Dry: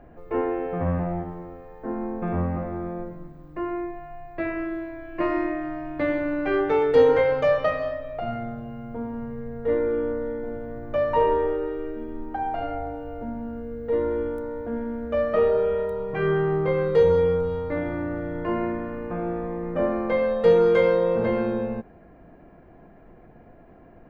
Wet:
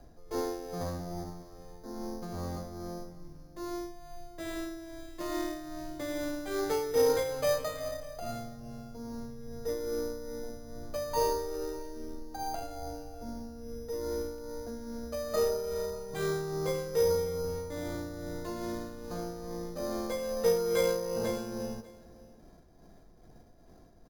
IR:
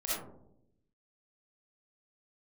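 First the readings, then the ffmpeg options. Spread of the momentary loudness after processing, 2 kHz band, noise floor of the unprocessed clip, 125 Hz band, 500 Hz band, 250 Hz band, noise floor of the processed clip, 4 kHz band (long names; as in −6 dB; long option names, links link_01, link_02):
16 LU, −11.0 dB, −50 dBFS, −10.0 dB, −10.0 dB, −10.5 dB, −55 dBFS, can't be measured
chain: -filter_complex "[0:a]lowshelf=frequency=94:gain=8,tremolo=f=2.4:d=0.51,acrossover=split=290|2100[link_01][link_02][link_03];[link_01]asoftclip=type=tanh:threshold=-29dB[link_04];[link_04][link_02][link_03]amix=inputs=3:normalize=0,acrusher=samples=8:mix=1:aa=0.000001,aecho=1:1:596:0.1,volume=-7.5dB"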